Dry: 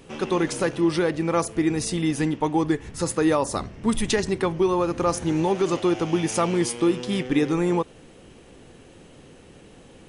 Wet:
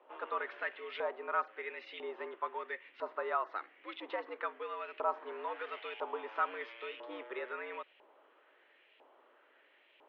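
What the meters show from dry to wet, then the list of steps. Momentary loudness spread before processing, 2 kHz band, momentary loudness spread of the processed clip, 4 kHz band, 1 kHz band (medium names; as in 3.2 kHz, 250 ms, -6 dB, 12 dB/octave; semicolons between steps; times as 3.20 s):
4 LU, -8.0 dB, 8 LU, -17.5 dB, -9.0 dB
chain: mistuned SSB +99 Hz 190–3600 Hz; LFO band-pass saw up 1 Hz 890–2600 Hz; trim -4.5 dB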